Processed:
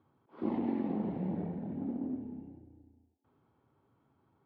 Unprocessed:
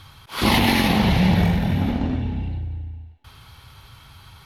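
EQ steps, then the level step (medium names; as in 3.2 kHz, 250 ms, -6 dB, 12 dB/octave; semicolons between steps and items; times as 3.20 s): ladder band-pass 360 Hz, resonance 40%; bass shelf 320 Hz +5 dB; -4.5 dB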